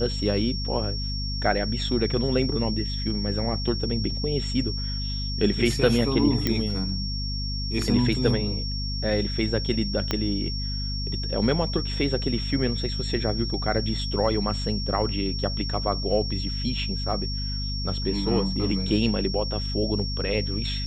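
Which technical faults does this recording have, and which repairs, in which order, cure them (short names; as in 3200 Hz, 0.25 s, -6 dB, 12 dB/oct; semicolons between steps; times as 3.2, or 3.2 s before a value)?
hum 50 Hz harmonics 5 -30 dBFS
tone 5500 Hz -32 dBFS
6.47 pop -9 dBFS
10.11 pop -9 dBFS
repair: de-click; notch 5500 Hz, Q 30; de-hum 50 Hz, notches 5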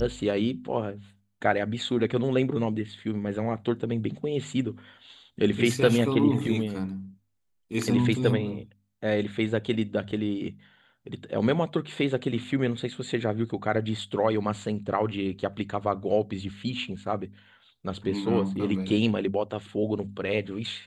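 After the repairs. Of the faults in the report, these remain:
10.11 pop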